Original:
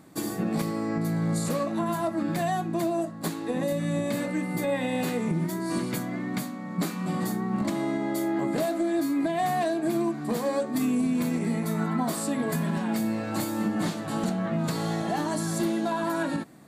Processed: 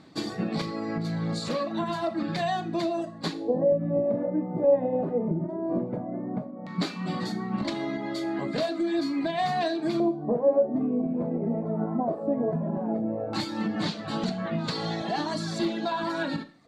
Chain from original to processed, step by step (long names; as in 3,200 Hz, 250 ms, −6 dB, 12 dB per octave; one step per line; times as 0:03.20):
auto-filter low-pass square 0.15 Hz 610–4,300 Hz
reverb reduction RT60 0.75 s
four-comb reverb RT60 0.48 s, combs from 26 ms, DRR 11.5 dB